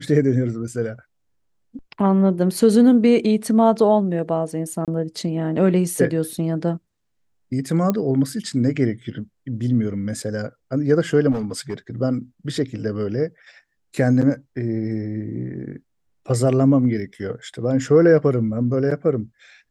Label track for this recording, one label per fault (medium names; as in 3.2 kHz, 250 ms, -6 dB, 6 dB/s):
4.850000	4.880000	dropout 27 ms
7.900000	7.900000	pop -8 dBFS
11.310000	11.740000	clipped -20.5 dBFS